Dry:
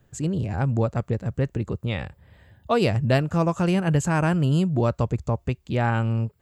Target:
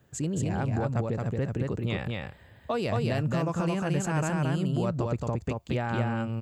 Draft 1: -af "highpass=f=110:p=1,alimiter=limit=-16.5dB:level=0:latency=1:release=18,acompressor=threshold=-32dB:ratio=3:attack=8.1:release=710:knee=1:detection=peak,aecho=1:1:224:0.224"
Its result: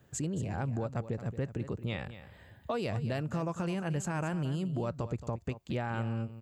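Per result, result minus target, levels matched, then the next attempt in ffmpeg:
echo-to-direct -10.5 dB; compressor: peak gain reduction +4.5 dB
-af "highpass=f=110:p=1,alimiter=limit=-16.5dB:level=0:latency=1:release=18,acompressor=threshold=-32dB:ratio=3:attack=8.1:release=710:knee=1:detection=peak,aecho=1:1:224:0.75"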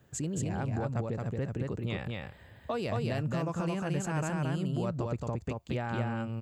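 compressor: peak gain reduction +4.5 dB
-af "highpass=f=110:p=1,alimiter=limit=-16.5dB:level=0:latency=1:release=18,acompressor=threshold=-25.5dB:ratio=3:attack=8.1:release=710:knee=1:detection=peak,aecho=1:1:224:0.75"

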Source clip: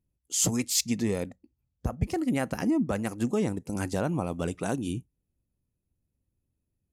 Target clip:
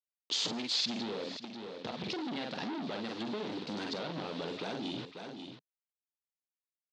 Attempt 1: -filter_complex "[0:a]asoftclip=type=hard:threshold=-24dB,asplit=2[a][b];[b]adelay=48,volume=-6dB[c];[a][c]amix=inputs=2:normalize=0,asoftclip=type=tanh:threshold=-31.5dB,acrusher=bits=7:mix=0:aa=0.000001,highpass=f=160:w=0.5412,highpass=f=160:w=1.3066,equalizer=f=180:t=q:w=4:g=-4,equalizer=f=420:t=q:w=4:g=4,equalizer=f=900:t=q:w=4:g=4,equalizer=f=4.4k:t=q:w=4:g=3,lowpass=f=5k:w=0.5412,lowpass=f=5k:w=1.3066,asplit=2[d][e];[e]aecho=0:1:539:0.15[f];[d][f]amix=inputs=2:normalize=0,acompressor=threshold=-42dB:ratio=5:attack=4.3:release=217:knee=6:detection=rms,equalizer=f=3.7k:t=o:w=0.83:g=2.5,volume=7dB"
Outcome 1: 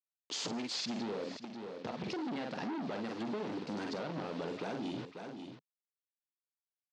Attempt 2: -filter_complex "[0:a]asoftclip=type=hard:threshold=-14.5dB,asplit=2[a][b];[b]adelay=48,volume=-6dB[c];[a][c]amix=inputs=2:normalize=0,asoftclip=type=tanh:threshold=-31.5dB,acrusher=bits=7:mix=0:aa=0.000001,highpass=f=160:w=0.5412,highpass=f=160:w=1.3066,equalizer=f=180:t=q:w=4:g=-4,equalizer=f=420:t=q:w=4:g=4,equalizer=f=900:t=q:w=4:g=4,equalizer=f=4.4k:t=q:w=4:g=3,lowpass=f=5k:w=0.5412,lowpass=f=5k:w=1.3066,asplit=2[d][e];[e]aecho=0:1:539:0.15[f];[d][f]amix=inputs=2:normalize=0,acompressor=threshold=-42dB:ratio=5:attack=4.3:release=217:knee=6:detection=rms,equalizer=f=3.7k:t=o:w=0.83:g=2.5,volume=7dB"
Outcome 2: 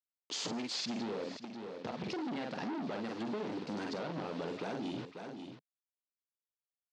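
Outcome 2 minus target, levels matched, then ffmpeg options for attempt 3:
4000 Hz band -5.0 dB
-filter_complex "[0:a]asoftclip=type=hard:threshold=-14.5dB,asplit=2[a][b];[b]adelay=48,volume=-6dB[c];[a][c]amix=inputs=2:normalize=0,asoftclip=type=tanh:threshold=-31.5dB,acrusher=bits=7:mix=0:aa=0.000001,highpass=f=160:w=0.5412,highpass=f=160:w=1.3066,equalizer=f=180:t=q:w=4:g=-4,equalizer=f=420:t=q:w=4:g=4,equalizer=f=900:t=q:w=4:g=4,equalizer=f=4.4k:t=q:w=4:g=3,lowpass=f=5k:w=0.5412,lowpass=f=5k:w=1.3066,asplit=2[d][e];[e]aecho=0:1:539:0.15[f];[d][f]amix=inputs=2:normalize=0,acompressor=threshold=-42dB:ratio=5:attack=4.3:release=217:knee=6:detection=rms,equalizer=f=3.7k:t=o:w=0.83:g=12.5,volume=7dB"

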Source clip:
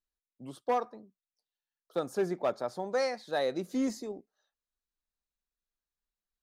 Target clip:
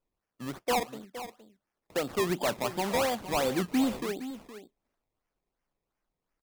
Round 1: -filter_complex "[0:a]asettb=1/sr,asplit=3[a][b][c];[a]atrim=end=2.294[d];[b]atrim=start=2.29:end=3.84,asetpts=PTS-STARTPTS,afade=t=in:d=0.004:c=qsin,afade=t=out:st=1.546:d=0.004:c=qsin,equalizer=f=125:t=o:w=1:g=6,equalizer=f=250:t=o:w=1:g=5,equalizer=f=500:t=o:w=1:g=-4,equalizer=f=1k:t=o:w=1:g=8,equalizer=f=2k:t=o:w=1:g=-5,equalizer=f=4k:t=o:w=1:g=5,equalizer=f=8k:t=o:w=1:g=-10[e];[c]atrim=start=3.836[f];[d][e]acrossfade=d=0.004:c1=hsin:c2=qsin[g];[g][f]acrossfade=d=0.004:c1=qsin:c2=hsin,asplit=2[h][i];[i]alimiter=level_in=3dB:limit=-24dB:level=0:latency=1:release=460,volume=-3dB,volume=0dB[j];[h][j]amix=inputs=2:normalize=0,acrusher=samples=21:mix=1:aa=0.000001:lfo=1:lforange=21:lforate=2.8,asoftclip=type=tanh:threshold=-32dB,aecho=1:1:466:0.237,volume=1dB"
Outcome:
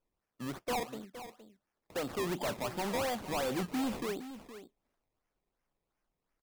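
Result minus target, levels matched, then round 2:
soft clip: distortion +8 dB
-filter_complex "[0:a]asettb=1/sr,asplit=3[a][b][c];[a]atrim=end=2.294[d];[b]atrim=start=2.29:end=3.84,asetpts=PTS-STARTPTS,afade=t=in:d=0.004:c=qsin,afade=t=out:st=1.546:d=0.004:c=qsin,equalizer=f=125:t=o:w=1:g=6,equalizer=f=250:t=o:w=1:g=5,equalizer=f=500:t=o:w=1:g=-4,equalizer=f=1k:t=o:w=1:g=8,equalizer=f=2k:t=o:w=1:g=-5,equalizer=f=4k:t=o:w=1:g=5,equalizer=f=8k:t=o:w=1:g=-10[e];[c]atrim=start=3.836[f];[d][e]acrossfade=d=0.004:c1=hsin:c2=qsin[g];[g][f]acrossfade=d=0.004:c1=qsin:c2=hsin,asplit=2[h][i];[i]alimiter=level_in=3dB:limit=-24dB:level=0:latency=1:release=460,volume=-3dB,volume=0dB[j];[h][j]amix=inputs=2:normalize=0,acrusher=samples=21:mix=1:aa=0.000001:lfo=1:lforange=21:lforate=2.8,asoftclip=type=tanh:threshold=-22.5dB,aecho=1:1:466:0.237,volume=1dB"

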